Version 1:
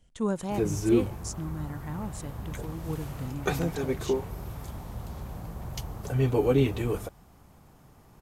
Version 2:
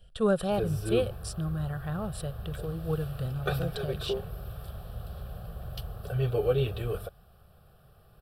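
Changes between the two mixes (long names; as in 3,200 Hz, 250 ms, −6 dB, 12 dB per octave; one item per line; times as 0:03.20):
speech +8.5 dB
master: add phaser with its sweep stopped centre 1,400 Hz, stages 8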